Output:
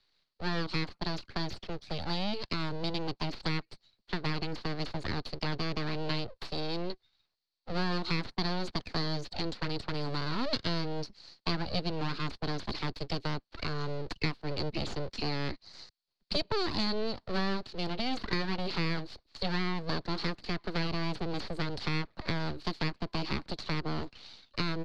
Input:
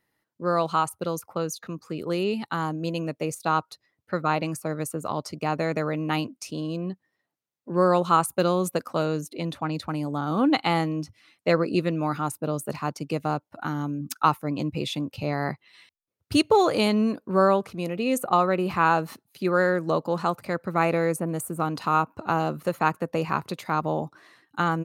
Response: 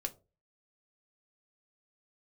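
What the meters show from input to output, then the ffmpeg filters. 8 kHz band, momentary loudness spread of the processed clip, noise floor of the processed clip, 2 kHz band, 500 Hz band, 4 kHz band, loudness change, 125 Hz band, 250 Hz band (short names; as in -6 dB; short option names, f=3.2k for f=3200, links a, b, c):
-16.0 dB, 6 LU, -80 dBFS, -6.5 dB, -12.5 dB, +1.0 dB, -9.0 dB, -5.0 dB, -8.5 dB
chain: -filter_complex "[0:a]aeval=exprs='abs(val(0))':c=same,acrossover=split=93|400|2000[a][b][c][d];[a]acompressor=threshold=-36dB:ratio=4[e];[b]acompressor=threshold=-33dB:ratio=4[f];[c]acompressor=threshold=-40dB:ratio=4[g];[d]acompressor=threshold=-47dB:ratio=4[h];[e][f][g][h]amix=inputs=4:normalize=0,lowpass=f=4.4k:t=q:w=7.7"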